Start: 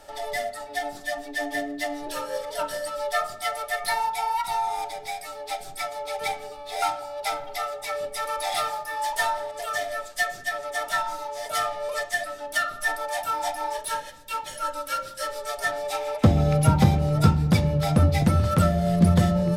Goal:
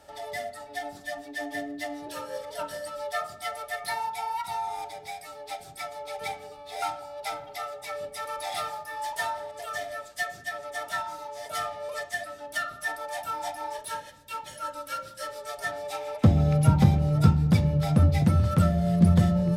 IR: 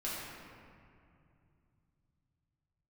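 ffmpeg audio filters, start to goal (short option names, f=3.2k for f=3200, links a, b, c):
-af "highpass=61,bass=f=250:g=6,treble=f=4k:g=-1,volume=-5.5dB"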